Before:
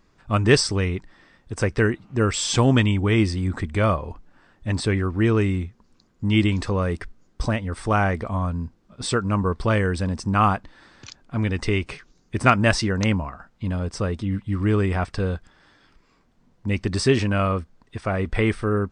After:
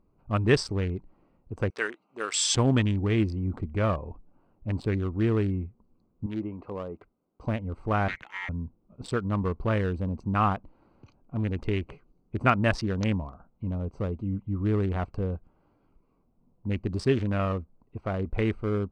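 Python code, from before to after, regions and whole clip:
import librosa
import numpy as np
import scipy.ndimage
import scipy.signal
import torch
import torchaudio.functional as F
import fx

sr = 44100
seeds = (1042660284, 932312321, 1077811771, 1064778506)

y = fx.chain(x, sr, fx.highpass(hz=380.0, slope=12),
    fx.tilt_eq(slope=4.0), at=(1.7, 2.55))
y = fx.chain(y, sr, fx.highpass(hz=520.0, slope=6),
    fx.env_lowpass_down(base_hz=1400.0, full_db=-24.5), at=(6.26, 7.47))
y = fx.chain(y, sr, fx.ring_mod(carrier_hz=2000.0),
    fx.band_widen(depth_pct=70), at=(8.08, 8.49))
y = fx.wiener(y, sr, points=25)
y = fx.high_shelf(y, sr, hz=5400.0, db=-9.0)
y = y * librosa.db_to_amplitude(-5.0)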